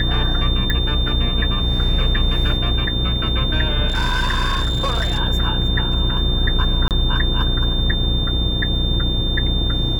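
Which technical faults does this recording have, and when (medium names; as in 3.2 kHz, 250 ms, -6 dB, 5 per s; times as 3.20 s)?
buzz 60 Hz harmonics 9 -22 dBFS
whine 3.6 kHz -23 dBFS
0.70 s: pop -8 dBFS
3.88–5.20 s: clipped -15 dBFS
6.88–6.91 s: dropout 28 ms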